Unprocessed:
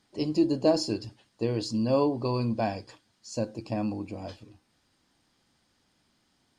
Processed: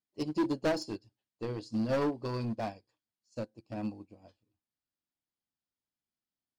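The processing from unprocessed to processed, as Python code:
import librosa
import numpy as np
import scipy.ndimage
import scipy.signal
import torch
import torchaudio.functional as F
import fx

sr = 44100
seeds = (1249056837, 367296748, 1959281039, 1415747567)

y = np.clip(x, -10.0 ** (-24.0 / 20.0), 10.0 ** (-24.0 / 20.0))
y = fx.upward_expand(y, sr, threshold_db=-44.0, expansion=2.5)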